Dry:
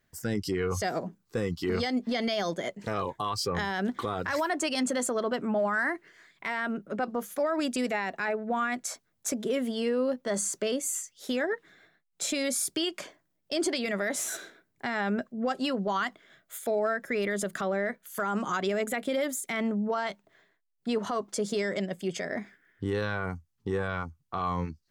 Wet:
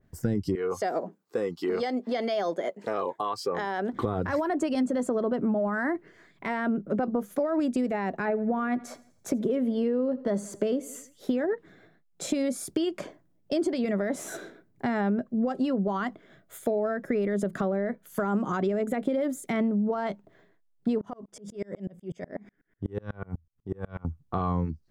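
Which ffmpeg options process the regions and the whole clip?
ffmpeg -i in.wav -filter_complex "[0:a]asettb=1/sr,asplit=3[link_01][link_02][link_03];[link_01]atrim=end=0.554[link_04];[link_02]atrim=start=0.55:end=3.93,asetpts=PTS-STARTPTS,afade=type=in:duration=0.004:curve=qsin,afade=type=out:start_time=3.376:duration=0.004:curve=qsin,highpass=470,bandreject=frequency=5900:width=27[link_05];[link_03]atrim=start=3.926[link_06];[link_04][link_05]acrossfade=duration=0.004:curve1=hsin:curve2=qsin[link_07];[link_07][link_06]acrossfade=duration=0.004:curve1=qsin:curve2=hsin,asettb=1/sr,asplit=3[link_08][link_09][link_10];[link_08]atrim=end=8.224[link_11];[link_09]atrim=start=8.22:end=11.39,asetpts=PTS-STARTPTS,afade=type=in:duration=0.004:curve=qsin,afade=type=out:start_time=3.166:duration=0.004:curve=qsin,equalizer=frequency=7900:width=1.1:gain=-6,aecho=1:1:83|166|249|332:0.0794|0.0413|0.0215|0.0112,atrim=end_sample=139797[link_12];[link_10]atrim=start=11.386[link_13];[link_11][link_12]acrossfade=duration=0.004:curve1=hsin:curve2=qsin[link_14];[link_14][link_13]acrossfade=duration=0.004:curve1=qsin:curve2=hsin,asettb=1/sr,asplit=3[link_15][link_16][link_17];[link_15]atrim=end=21.014[link_18];[link_16]atrim=start=21.01:end=24.05,asetpts=PTS-STARTPTS,afade=type=in:duration=0.004:curve=qsin,afade=type=out:start_time=3.036:duration=0.004:curve=qsin,acompressor=threshold=-31dB:ratio=4:attack=3.2:release=140:knee=1:detection=peak,asuperstop=centerf=4200:order=4:qfactor=6,aeval=exprs='val(0)*pow(10,-34*if(lt(mod(-8.1*n/s,1),2*abs(-8.1)/1000),1-mod(-8.1*n/s,1)/(2*abs(-8.1)/1000),(mod(-8.1*n/s,1)-2*abs(-8.1)/1000)/(1-2*abs(-8.1)/1000))/20)':channel_layout=same[link_19];[link_17]atrim=start=24.046[link_20];[link_18][link_19]acrossfade=duration=0.004:curve1=hsin:curve2=qsin[link_21];[link_21][link_20]acrossfade=duration=0.004:curve1=qsin:curve2=hsin,tiltshelf=frequency=880:gain=8.5,acompressor=threshold=-27dB:ratio=6,adynamicequalizer=threshold=0.00501:dfrequency=2300:dqfactor=0.7:tfrequency=2300:tqfactor=0.7:attack=5:release=100:ratio=0.375:range=2:mode=cutabove:tftype=highshelf,volume=3.5dB" out.wav

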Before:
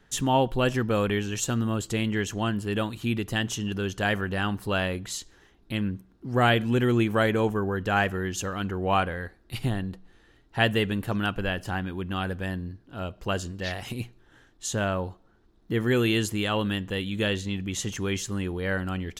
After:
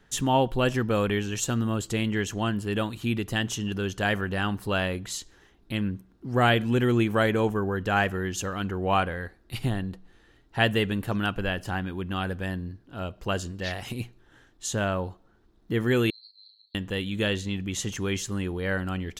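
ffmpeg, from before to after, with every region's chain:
ffmpeg -i in.wav -filter_complex "[0:a]asettb=1/sr,asplit=3[link_01][link_02][link_03];[link_01]atrim=end=16.104[link_04];[link_02]atrim=start=16.1:end=16.75,asetpts=PTS-STARTPTS,afade=type=in:duration=0.004:curve=qsin,afade=type=out:start_time=0.646:duration=0.004:curve=qsin,asuperpass=centerf=4300:order=8:qfactor=8,acompressor=threshold=-47dB:ratio=6:attack=3.2:release=140:knee=1:detection=peak,asplit=2[link_05][link_06];[link_06]adelay=36,volume=-5.5dB[link_07];[link_05][link_07]amix=inputs=2:normalize=0,atrim=end_sample=28665[link_08];[link_03]atrim=start=16.746[link_09];[link_04][link_08]acrossfade=duration=0.004:curve1=hsin:curve2=qsin[link_10];[link_10][link_09]acrossfade=duration=0.004:curve1=qsin:curve2=hsin" out.wav

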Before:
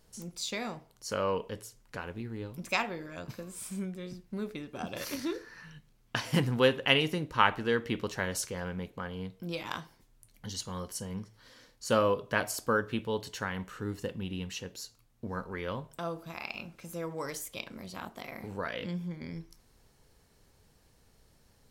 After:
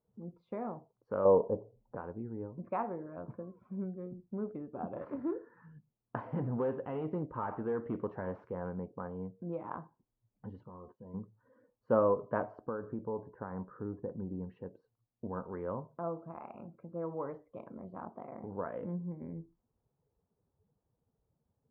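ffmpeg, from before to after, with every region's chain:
ffmpeg -i in.wav -filter_complex "[0:a]asettb=1/sr,asplit=3[link_01][link_02][link_03];[link_01]atrim=end=1.254[link_04];[link_02]atrim=start=1.25:end=1.95,asetpts=PTS-STARTPTS,afade=type=in:duration=0.004:curve=qsin,afade=type=out:start_time=0.696:duration=0.004:curve=qsin,lowpass=frequency=690:width_type=q:width=1.7,acontrast=24[link_05];[link_03]atrim=start=1.946[link_06];[link_04][link_05]acrossfade=duration=0.004:curve1=hsin:curve2=qsin[link_07];[link_07][link_06]acrossfade=duration=0.004:curve1=qsin:curve2=hsin,asettb=1/sr,asplit=3[link_08][link_09][link_10];[link_08]atrim=end=6.204[link_11];[link_09]atrim=start=6.2:end=8.69,asetpts=PTS-STARTPTS,afade=type=in:duration=0.004:curve=qsin,afade=type=out:start_time=2.486:duration=0.004:curve=qsin,aemphasis=mode=production:type=75kf,acompressor=threshold=-26dB:ratio=2:attack=3.2:release=140:knee=1:detection=peak,asoftclip=type=hard:threshold=-27dB[link_12];[link_10]atrim=start=8.686[link_13];[link_11][link_12]acrossfade=duration=0.004:curve1=hsin:curve2=qsin[link_14];[link_14][link_13]acrossfade=duration=0.004:curve1=qsin:curve2=hsin,asettb=1/sr,asplit=3[link_15][link_16][link_17];[link_15]atrim=end=10.664[link_18];[link_16]atrim=start=10.66:end=11.14,asetpts=PTS-STARTPTS,afade=type=in:duration=0.004:curve=qsin,afade=type=out:start_time=0.476:duration=0.004:curve=qsin,asplit=2[link_19][link_20];[link_20]adelay=14,volume=-9dB[link_21];[link_19][link_21]amix=inputs=2:normalize=0,atrim=end_sample=21168,acompressor=threshold=-43dB:ratio=12:attack=3.2:release=140:knee=1:detection=peak[link_22];[link_17]atrim=start=11.136[link_23];[link_18][link_22]acrossfade=duration=0.004:curve1=hsin:curve2=qsin[link_24];[link_24][link_23]acrossfade=duration=0.004:curve1=qsin:curve2=hsin,asettb=1/sr,asplit=3[link_25][link_26][link_27];[link_25]atrim=end=12.654[link_28];[link_26]atrim=start=12.65:end=14.48,asetpts=PTS-STARTPTS,afade=type=in:duration=0.004:curve=qsin,afade=type=out:start_time=1.826:duration=0.004:curve=qsin,acompressor=threshold=-31dB:ratio=5:attack=3.2:release=140:knee=1:detection=peak,asuperstop=centerf=4000:order=4:qfactor=0.64[link_29];[link_27]atrim=start=14.476[link_30];[link_28][link_29]acrossfade=duration=0.004:curve1=hsin:curve2=qsin[link_31];[link_31][link_30]acrossfade=duration=0.004:curve1=qsin:curve2=hsin,highpass=frequency=150:poles=1,afftdn=noise_reduction=16:noise_floor=-55,lowpass=frequency=1100:width=0.5412,lowpass=frequency=1100:width=1.3066" out.wav

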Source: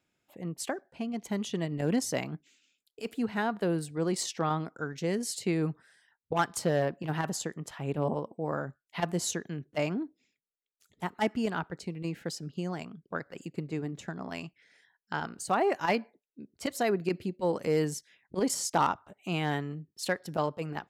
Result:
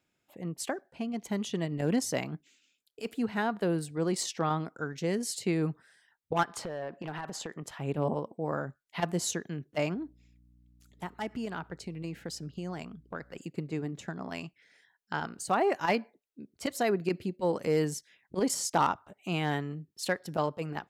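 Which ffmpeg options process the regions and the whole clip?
ffmpeg -i in.wav -filter_complex "[0:a]asettb=1/sr,asplit=3[link_01][link_02][link_03];[link_01]atrim=end=6.434[link_04];[link_02]atrim=start=6.43:end=7.63,asetpts=PTS-STARTPTS,afade=type=in:duration=0.004:curve=qsin,afade=type=out:start_time=1.196:duration=0.004:curve=qsin,asplit=2[link_05][link_06];[link_06]highpass=frequency=720:poles=1,volume=12dB,asoftclip=type=tanh:threshold=-14.5dB[link_07];[link_05][link_07]amix=inputs=2:normalize=0,lowpass=frequency=1700:poles=1,volume=-6dB,acompressor=threshold=-33dB:ratio=8:attack=3.2:release=140:knee=1:detection=peak,asoftclip=type=hard:threshold=-29.5dB[link_08];[link_03]atrim=start=7.626[link_09];[link_04][link_08]acrossfade=duration=0.004:curve1=hsin:curve2=qsin[link_10];[link_10][link_09]acrossfade=duration=0.004:curve1=qsin:curve2=hsin,asettb=1/sr,asplit=3[link_11][link_12][link_13];[link_11]atrim=end=9.944[link_14];[link_12]atrim=start=9.94:end=13.38,asetpts=PTS-STARTPTS,afade=type=in:duration=0.004:curve=qsin,afade=type=out:start_time=3.436:duration=0.004:curve=qsin,acompressor=threshold=-34dB:ratio=2.5:attack=3.2:release=140:knee=1:detection=peak,aeval=exprs='val(0)+0.001*(sin(2*PI*60*n/s)+sin(2*PI*2*60*n/s)/2+sin(2*PI*3*60*n/s)/3+sin(2*PI*4*60*n/s)/4+sin(2*PI*5*60*n/s)/5)':channel_layout=same[link_15];[link_13]atrim=start=13.376[link_16];[link_14][link_15]acrossfade=duration=0.004:curve1=hsin:curve2=qsin[link_17];[link_17][link_16]acrossfade=duration=0.004:curve1=qsin:curve2=hsin" out.wav

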